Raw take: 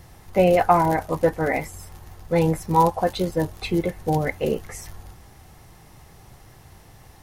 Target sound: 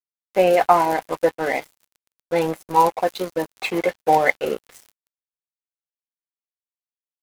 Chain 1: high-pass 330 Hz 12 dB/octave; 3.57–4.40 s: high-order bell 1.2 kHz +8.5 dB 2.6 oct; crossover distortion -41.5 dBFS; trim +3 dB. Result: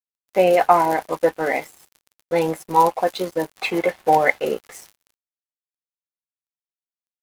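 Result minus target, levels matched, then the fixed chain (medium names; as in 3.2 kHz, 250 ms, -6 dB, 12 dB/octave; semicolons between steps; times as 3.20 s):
crossover distortion: distortion -5 dB
high-pass 330 Hz 12 dB/octave; 3.57–4.40 s: high-order bell 1.2 kHz +8.5 dB 2.6 oct; crossover distortion -35 dBFS; trim +3 dB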